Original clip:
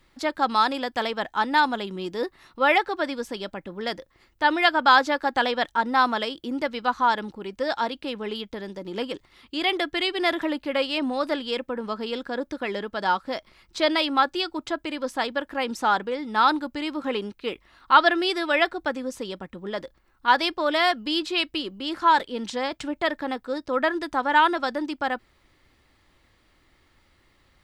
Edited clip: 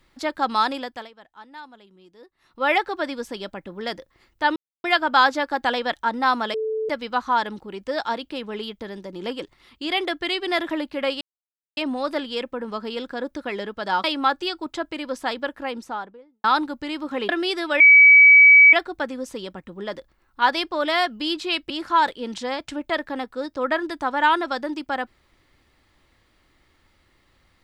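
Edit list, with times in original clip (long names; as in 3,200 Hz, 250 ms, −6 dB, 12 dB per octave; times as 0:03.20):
0:00.72–0:02.73: duck −20.5 dB, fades 0.38 s
0:04.56: splice in silence 0.28 s
0:06.26–0:06.61: beep over 438 Hz −22.5 dBFS
0:10.93: splice in silence 0.56 s
0:13.20–0:13.97: remove
0:15.33–0:16.37: fade out and dull
0:17.22–0:18.08: remove
0:18.59: insert tone 2,280 Hz −7 dBFS 0.93 s
0:21.56–0:21.82: remove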